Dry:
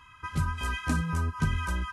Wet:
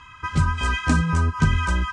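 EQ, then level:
Butterworth low-pass 8,600 Hz 36 dB per octave
+8.5 dB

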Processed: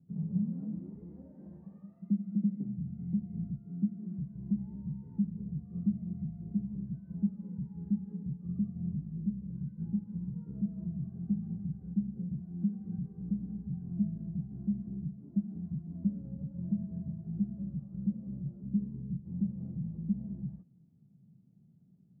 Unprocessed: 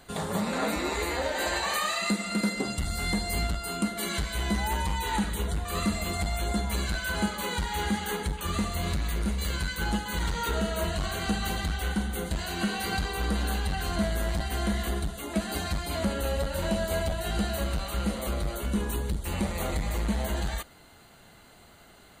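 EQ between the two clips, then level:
flat-topped band-pass 160 Hz, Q 2.1
high-frequency loss of the air 410 metres
+3.0 dB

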